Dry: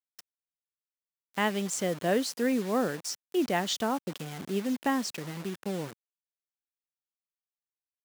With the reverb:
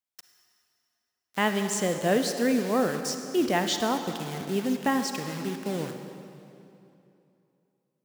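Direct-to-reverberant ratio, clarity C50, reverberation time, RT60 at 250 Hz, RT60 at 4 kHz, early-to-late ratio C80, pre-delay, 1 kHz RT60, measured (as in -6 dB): 6.5 dB, 7.0 dB, 2.8 s, 2.9 s, 2.3 s, 7.5 dB, 39 ms, 2.8 s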